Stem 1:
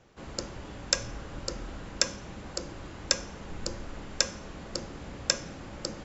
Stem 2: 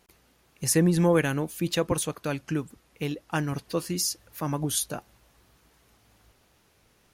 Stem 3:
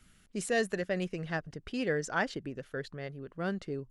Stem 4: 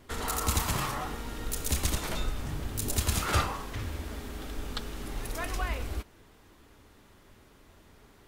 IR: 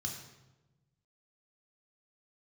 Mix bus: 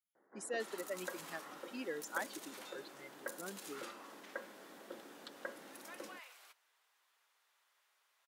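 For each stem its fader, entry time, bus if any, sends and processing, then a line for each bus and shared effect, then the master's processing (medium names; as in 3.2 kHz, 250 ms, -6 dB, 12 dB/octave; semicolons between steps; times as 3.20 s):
-10.0 dB, 0.15 s, no send, steep low-pass 2 kHz 96 dB/octave; band-stop 1.2 kHz, Q 22
mute
0.0 dB, 0.00 s, no send, expander on every frequency bin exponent 2; compression 1.5:1, threshold -50 dBFS, peak gain reduction 8.5 dB
-12.5 dB, 0.50 s, no send, Bessel high-pass 1.1 kHz, order 4; compression, threshold -35 dBFS, peak gain reduction 8 dB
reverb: none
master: high-pass 260 Hz 24 dB/octave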